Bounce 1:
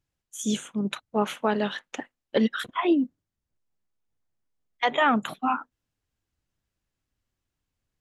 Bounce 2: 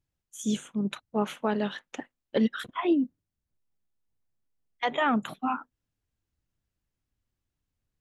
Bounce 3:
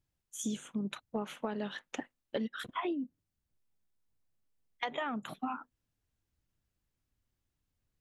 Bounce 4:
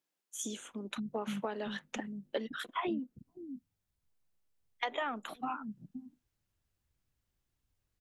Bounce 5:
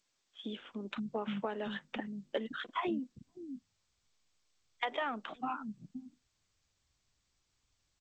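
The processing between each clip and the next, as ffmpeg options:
-af "lowshelf=f=330:g=5.5,volume=0.562"
-af "acompressor=threshold=0.0251:ratio=12"
-filter_complex "[0:a]acrossover=split=240[s0][s1];[s0]adelay=520[s2];[s2][s1]amix=inputs=2:normalize=0,volume=1.12"
-af "aresample=8000,aresample=44100" -ar 16000 -c:a g722

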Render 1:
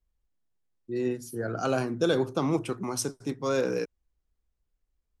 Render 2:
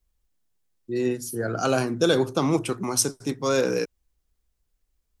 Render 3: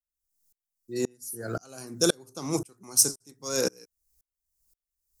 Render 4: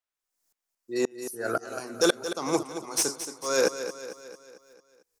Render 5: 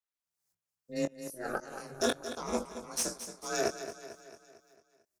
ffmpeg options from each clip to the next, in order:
-af "highshelf=f=3500:g=7,volume=1.58"
-af "aexciter=amount=3.8:drive=8.6:freq=4700,aeval=exprs='val(0)*pow(10,-35*if(lt(mod(-1.9*n/s,1),2*abs(-1.9)/1000),1-mod(-1.9*n/s,1)/(2*abs(-1.9)/1000),(mod(-1.9*n/s,1)-2*abs(-1.9)/1000)/(1-2*abs(-1.9)/1000))/20)':c=same"
-filter_complex "[0:a]asplit=2[s0][s1];[s1]highpass=f=720:p=1,volume=7.08,asoftclip=type=tanh:threshold=0.631[s2];[s0][s2]amix=inputs=2:normalize=0,lowpass=f=1600:p=1,volume=0.501,lowshelf=f=200:g=-9.5,aecho=1:1:224|448|672|896|1120|1344:0.282|0.149|0.0792|0.042|0.0222|0.0118"
-filter_complex "[0:a]afreqshift=32,asplit=2[s0][s1];[s1]adelay=22,volume=0.501[s2];[s0][s2]amix=inputs=2:normalize=0,aeval=exprs='val(0)*sin(2*PI*130*n/s)':c=same,volume=0.562"

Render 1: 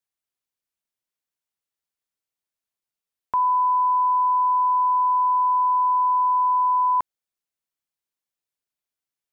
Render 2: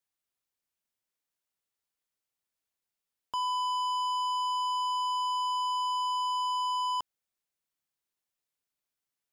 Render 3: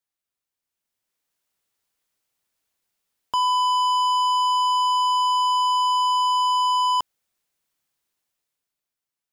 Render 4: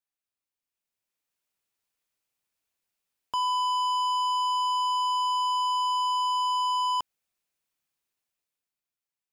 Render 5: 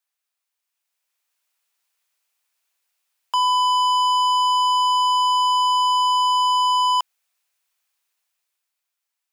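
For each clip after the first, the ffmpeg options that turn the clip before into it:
-af "asoftclip=type=tanh:threshold=0.0335"
-af "dynaudnorm=f=100:g=21:m=3.16"
-af "equalizer=f=2500:w=7:g=4,volume=0.501"
-af "highpass=740,volume=2.82"

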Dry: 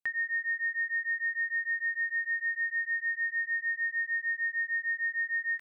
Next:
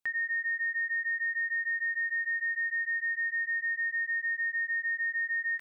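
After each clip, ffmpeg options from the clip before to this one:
-af "alimiter=level_in=2.11:limit=0.0631:level=0:latency=1,volume=0.473,volume=1.5"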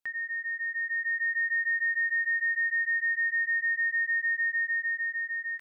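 -af "dynaudnorm=f=220:g=9:m=2,volume=0.75"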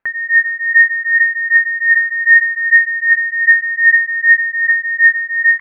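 -af "alimiter=level_in=1.41:limit=0.0631:level=0:latency=1:release=111,volume=0.708,aphaser=in_gain=1:out_gain=1:delay=1.1:decay=0.66:speed=0.64:type=triangular,lowpass=f=1800:t=q:w=2.5,volume=2.66"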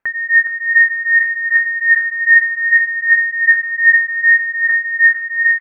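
-af "aecho=1:1:415|830|1245|1660:0.355|0.124|0.0435|0.0152"

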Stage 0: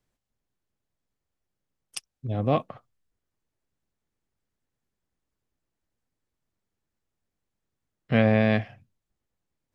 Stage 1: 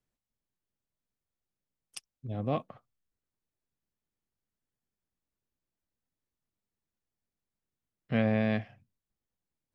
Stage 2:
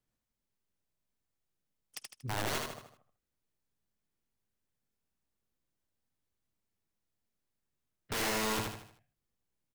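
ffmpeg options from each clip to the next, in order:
-af "equalizer=f=210:t=o:w=0.77:g=2.5,volume=0.398"
-filter_complex "[0:a]aeval=exprs='(mod(31.6*val(0)+1,2)-1)/31.6':c=same,asplit=2[s0][s1];[s1]aecho=0:1:78|156|234|312|390:0.668|0.281|0.118|0.0495|0.0208[s2];[s0][s2]amix=inputs=2:normalize=0"

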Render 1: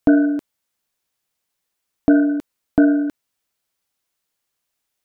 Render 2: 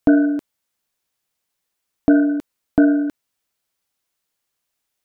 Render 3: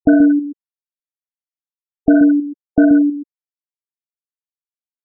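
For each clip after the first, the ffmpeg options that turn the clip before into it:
-af anull
-af "aecho=1:1:61.22|131.2:0.316|0.501,afftfilt=real='re*gte(hypot(re,im),0.224)':imag='im*gte(hypot(re,im),0.224)':win_size=1024:overlap=0.75,volume=1.33"

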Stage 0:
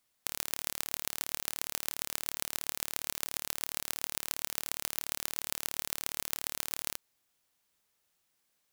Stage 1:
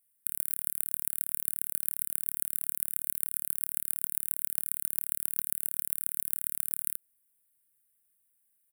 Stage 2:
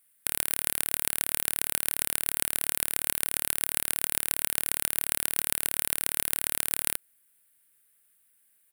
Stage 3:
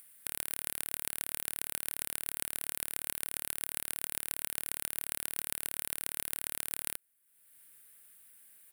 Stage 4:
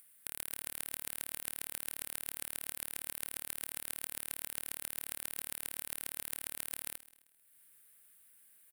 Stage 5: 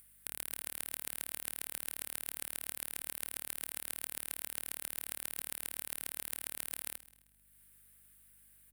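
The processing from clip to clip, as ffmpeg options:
-af "firequalizer=gain_entry='entry(150,0);entry(960,-21);entry(1500,-4);entry(5900,-19);entry(9000,11)':delay=0.05:min_phase=1,volume=0.596"
-filter_complex "[0:a]asplit=2[s0][s1];[s1]highpass=f=720:p=1,volume=3.55,asoftclip=type=tanh:threshold=0.891[s2];[s0][s2]amix=inputs=2:normalize=0,lowpass=f=4200:p=1,volume=0.501,volume=2.66"
-af "acompressor=mode=upward:threshold=0.0178:ratio=2.5,volume=0.376"
-af "aecho=1:1:131|262|393|524:0.133|0.06|0.027|0.0122,volume=0.596"
-af "aeval=exprs='val(0)+0.000224*(sin(2*PI*50*n/s)+sin(2*PI*2*50*n/s)/2+sin(2*PI*3*50*n/s)/3+sin(2*PI*4*50*n/s)/4+sin(2*PI*5*50*n/s)/5)':c=same"

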